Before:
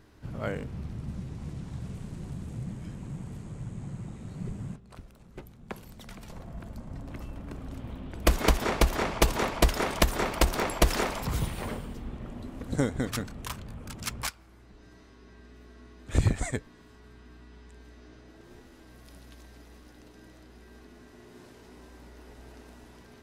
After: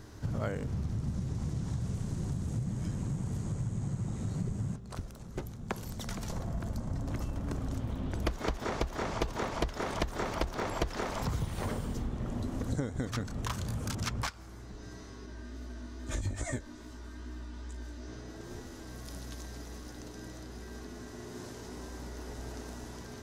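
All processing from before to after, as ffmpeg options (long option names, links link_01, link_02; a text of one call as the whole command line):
ffmpeg -i in.wav -filter_complex "[0:a]asettb=1/sr,asplit=3[link_01][link_02][link_03];[link_01]atrim=end=13.534[link_04];[link_02]atrim=start=13.53:end=13.95,asetpts=PTS-STARTPTS,afade=type=in:duration=0.004:curve=qsin,afade=type=out:start_time=0.416:duration=0.004:curve=qsin,highpass=46,highshelf=frequency=4700:gain=11.5,asplit=2[link_05][link_06];[link_06]adelay=35,volume=-12.5dB[link_07];[link_05][link_07]amix=inputs=2:normalize=0,atrim=end_sample=18522[link_08];[link_03]atrim=start=13.946[link_09];[link_04][link_08]acrossfade=duration=0.004:curve1=hsin:curve2=qsin[link_10];[link_10][link_09]acrossfade=duration=0.004:curve1=qsin:curve2=hsin,asettb=1/sr,asplit=3[link_11][link_12][link_13];[link_11]atrim=end=15.264[link_14];[link_12]atrim=start=15.26:end=18.08,asetpts=PTS-STARTPTS,afade=type=in:duration=0.004:curve=qsin,afade=type=out:start_time=2.816:duration=0.004:curve=qsin,aecho=1:1:3.3:0.66,atrim=end_sample=124362,acompressor=threshold=-30dB:ratio=6:attack=3.2:release=140:knee=1:detection=peak,flanger=delay=15.5:depth=5:speed=2.4[link_15];[link_13]atrim=start=18.076[link_16];[link_14][link_15]acrossfade=duration=0.004:curve1=hsin:curve2=qsin[link_17];[link_17][link_16]acrossfade=duration=0.004:curve1=qsin:curve2=hsin,acrossover=split=4100[link_18][link_19];[link_19]acompressor=threshold=-49dB:ratio=4:attack=1:release=60[link_20];[link_18][link_20]amix=inputs=2:normalize=0,equalizer=frequency=100:width_type=o:width=0.67:gain=5,equalizer=frequency=2500:width_type=o:width=0.67:gain=-5,equalizer=frequency=6300:width_type=o:width=0.67:gain=7,acompressor=threshold=-37dB:ratio=6,volume=6.5dB" out.wav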